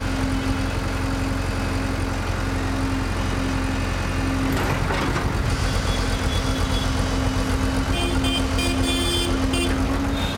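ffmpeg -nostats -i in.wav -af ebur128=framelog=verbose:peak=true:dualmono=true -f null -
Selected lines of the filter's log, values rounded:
Integrated loudness:
  I:         -20.2 LUFS
  Threshold: -30.2 LUFS
Loudness range:
  LRA:         2.6 LU
  Threshold: -40.2 LUFS
  LRA low:   -21.6 LUFS
  LRA high:  -19.0 LUFS
True peak:
  Peak:       -7.6 dBFS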